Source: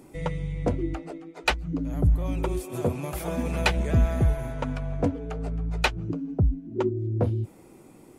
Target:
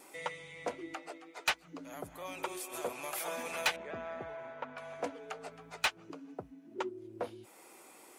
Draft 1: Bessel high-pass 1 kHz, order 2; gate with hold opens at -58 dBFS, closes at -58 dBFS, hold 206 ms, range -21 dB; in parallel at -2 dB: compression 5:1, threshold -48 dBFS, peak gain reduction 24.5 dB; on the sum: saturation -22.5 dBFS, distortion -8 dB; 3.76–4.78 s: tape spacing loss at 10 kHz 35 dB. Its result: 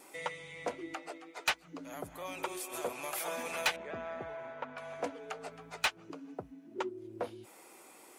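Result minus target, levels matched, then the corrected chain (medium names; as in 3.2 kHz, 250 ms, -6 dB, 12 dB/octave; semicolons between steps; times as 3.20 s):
compression: peak gain reduction -6.5 dB
Bessel high-pass 1 kHz, order 2; gate with hold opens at -58 dBFS, closes at -58 dBFS, hold 206 ms, range -21 dB; in parallel at -2 dB: compression 5:1, threshold -56 dBFS, peak gain reduction 31 dB; on the sum: saturation -22.5 dBFS, distortion -8 dB; 3.76–4.78 s: tape spacing loss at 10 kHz 35 dB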